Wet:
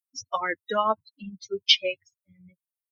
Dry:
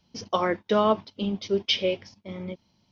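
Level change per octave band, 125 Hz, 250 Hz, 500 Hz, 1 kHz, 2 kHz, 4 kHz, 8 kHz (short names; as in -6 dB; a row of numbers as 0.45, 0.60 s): under -10 dB, -11.5 dB, -5.5 dB, 0.0 dB, +3.5 dB, +5.0 dB, n/a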